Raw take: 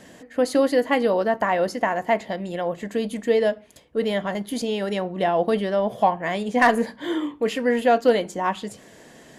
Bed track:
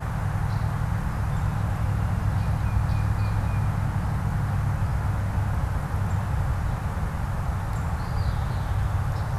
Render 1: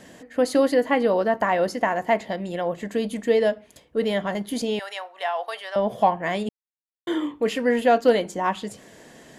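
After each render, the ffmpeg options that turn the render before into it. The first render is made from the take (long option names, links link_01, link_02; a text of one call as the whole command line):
ffmpeg -i in.wav -filter_complex "[0:a]asettb=1/sr,asplit=3[link_01][link_02][link_03];[link_01]atrim=end=0.744[link_04];[link_02]atrim=start=0.74:end=1.41,asetpts=PTS-STARTPTS,afade=type=in:duration=0.004:curve=qsin,afade=type=out:start_time=0.666:duration=0.004:curve=qsin,acrossover=split=3000[link_05][link_06];[link_06]acompressor=threshold=-44dB:ratio=4:attack=1:release=60[link_07];[link_05][link_07]amix=inputs=2:normalize=0[link_08];[link_03]atrim=start=1.406[link_09];[link_04][link_08]acrossfade=duration=0.004:curve1=hsin:curve2=qsin[link_10];[link_10][link_09]acrossfade=duration=0.004:curve1=qsin:curve2=hsin,asettb=1/sr,asplit=3[link_11][link_12][link_13];[link_11]atrim=end=4.794[link_14];[link_12]atrim=start=4.79:end=5.76,asetpts=PTS-STARTPTS,afade=type=in:duration=0.004:curve=qsin,afade=type=out:start_time=0.966:duration=0.004:curve=qsin,highpass=frequency=770:width=0.5412,highpass=frequency=770:width=1.3066[link_15];[link_13]atrim=start=5.756[link_16];[link_14][link_15]acrossfade=duration=0.004:curve1=hsin:curve2=qsin[link_17];[link_17][link_16]acrossfade=duration=0.004:curve1=qsin:curve2=hsin,asplit=3[link_18][link_19][link_20];[link_18]atrim=end=6.49,asetpts=PTS-STARTPTS,afade=type=out:start_time=6.486:duration=0.004:curve=hsin[link_21];[link_19]atrim=start=6.49:end=7.07,asetpts=PTS-STARTPTS,volume=0[link_22];[link_20]atrim=start=7.07,asetpts=PTS-STARTPTS,afade=type=in:duration=0.004:curve=hsin[link_23];[link_21][link_22][link_23]concat=n=3:v=0:a=1" out.wav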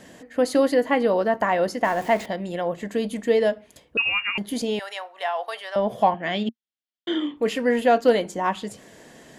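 ffmpeg -i in.wav -filter_complex "[0:a]asettb=1/sr,asplit=3[link_01][link_02][link_03];[link_01]atrim=end=1.844[link_04];[link_02]atrim=start=1.84:end=2.26,asetpts=PTS-STARTPTS,afade=type=in:duration=0.004:curve=qsin,afade=type=out:start_time=0.416:duration=0.004:curve=qsin,aeval=exprs='val(0)+0.5*0.0178*sgn(val(0))':channel_layout=same[link_05];[link_03]atrim=start=2.256[link_06];[link_04][link_05]acrossfade=duration=0.004:curve1=hsin:curve2=qsin[link_07];[link_07][link_06]acrossfade=duration=0.004:curve1=qsin:curve2=hsin,asettb=1/sr,asplit=3[link_08][link_09][link_10];[link_08]atrim=end=3.974[link_11];[link_09]atrim=start=3.97:end=4.38,asetpts=PTS-STARTPTS,afade=type=in:duration=0.004:curve=qsin,afade=type=out:start_time=0.406:duration=0.004:curve=qsin,lowpass=frequency=2600:width_type=q:width=0.5098,lowpass=frequency=2600:width_type=q:width=0.6013,lowpass=frequency=2600:width_type=q:width=0.9,lowpass=frequency=2600:width_type=q:width=2.563,afreqshift=-3000[link_12];[link_10]atrim=start=4.376[link_13];[link_11][link_12]acrossfade=duration=0.004:curve1=hsin:curve2=qsin[link_14];[link_14][link_13]acrossfade=duration=0.004:curve1=qsin:curve2=hsin,asettb=1/sr,asplit=3[link_15][link_16][link_17];[link_15]atrim=end=6.144[link_18];[link_16]atrim=start=6.14:end=7.37,asetpts=PTS-STARTPTS,afade=type=in:duration=0.004:curve=qsin,afade=type=out:start_time=1.226:duration=0.004:curve=qsin,highpass=160,equalizer=frequency=230:width_type=q:width=4:gain=7,equalizer=frequency=480:width_type=q:width=4:gain=-5,equalizer=frequency=1000:width_type=q:width=4:gain=-9,equalizer=frequency=3200:width_type=q:width=4:gain=8,lowpass=frequency=5900:width=0.5412,lowpass=frequency=5900:width=1.3066[link_19];[link_17]atrim=start=7.366[link_20];[link_18][link_19]acrossfade=duration=0.004:curve1=hsin:curve2=qsin[link_21];[link_21][link_20]acrossfade=duration=0.004:curve1=qsin:curve2=hsin" out.wav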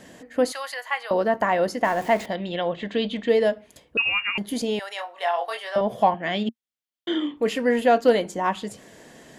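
ffmpeg -i in.wav -filter_complex "[0:a]asettb=1/sr,asplit=3[link_01][link_02][link_03];[link_01]atrim=end=0.524[link_04];[link_02]atrim=start=0.52:end=1.11,asetpts=PTS-STARTPTS,afade=type=in:duration=0.004:curve=qsin,afade=type=out:start_time=0.586:duration=0.004:curve=qsin,highpass=frequency=910:width=0.5412,highpass=frequency=910:width=1.3066[link_05];[link_03]atrim=start=1.106[link_06];[link_04][link_05]acrossfade=duration=0.004:curve1=hsin:curve2=qsin[link_07];[link_07][link_06]acrossfade=duration=0.004:curve1=qsin:curve2=hsin,asettb=1/sr,asplit=3[link_08][link_09][link_10];[link_08]atrim=end=2.354[link_11];[link_09]atrim=start=2.35:end=3.29,asetpts=PTS-STARTPTS,afade=type=in:duration=0.004:curve=qsin,afade=type=out:start_time=0.936:duration=0.004:curve=qsin,lowpass=frequency=3500:width_type=q:width=3.5[link_12];[link_10]atrim=start=3.286[link_13];[link_11][link_12]acrossfade=duration=0.004:curve1=hsin:curve2=qsin[link_14];[link_14][link_13]acrossfade=duration=0.004:curve1=qsin:curve2=hsin,asettb=1/sr,asplit=3[link_15][link_16][link_17];[link_15]atrim=end=4.964[link_18];[link_16]atrim=start=4.96:end=5.81,asetpts=PTS-STARTPTS,afade=type=in:duration=0.004:curve=qsin,afade=type=out:start_time=0.846:duration=0.004:curve=qsin,asplit=2[link_19][link_20];[link_20]adelay=23,volume=-3.5dB[link_21];[link_19][link_21]amix=inputs=2:normalize=0,atrim=end_sample=37485[link_22];[link_17]atrim=start=5.806[link_23];[link_18][link_22]acrossfade=duration=0.004:curve1=hsin:curve2=qsin[link_24];[link_24][link_23]acrossfade=duration=0.004:curve1=qsin:curve2=hsin" out.wav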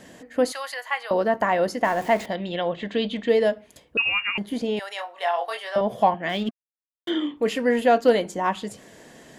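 ffmpeg -i in.wav -filter_complex "[0:a]asettb=1/sr,asplit=3[link_01][link_02][link_03];[link_01]atrim=end=4.374[link_04];[link_02]atrim=start=4.37:end=4.77,asetpts=PTS-STARTPTS,afade=type=in:duration=0.004:curve=qsin,afade=type=out:start_time=0.396:duration=0.004:curve=qsin,acrossover=split=3300[link_05][link_06];[link_06]acompressor=threshold=-47dB:ratio=4:attack=1:release=60[link_07];[link_05][link_07]amix=inputs=2:normalize=0[link_08];[link_03]atrim=start=4.766[link_09];[link_04][link_08]acrossfade=duration=0.004:curve1=hsin:curve2=qsin[link_10];[link_10][link_09]acrossfade=duration=0.004:curve1=qsin:curve2=hsin,asplit=3[link_11][link_12][link_13];[link_11]afade=type=out:start_time=6.28:duration=0.02[link_14];[link_12]aeval=exprs='sgn(val(0))*max(abs(val(0))-0.00631,0)':channel_layout=same,afade=type=in:start_time=6.28:duration=0.02,afade=type=out:start_time=7.09:duration=0.02[link_15];[link_13]afade=type=in:start_time=7.09:duration=0.02[link_16];[link_14][link_15][link_16]amix=inputs=3:normalize=0" out.wav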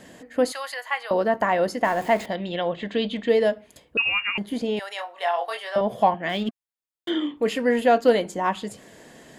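ffmpeg -i in.wav -af "bandreject=frequency=5800:width=15" out.wav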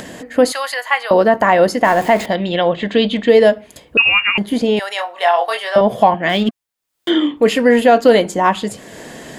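ffmpeg -i in.wav -af "acompressor=mode=upward:threshold=-38dB:ratio=2.5,alimiter=level_in=10.5dB:limit=-1dB:release=50:level=0:latency=1" out.wav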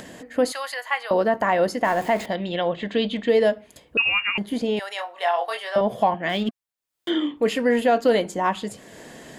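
ffmpeg -i in.wav -af "volume=-8.5dB" out.wav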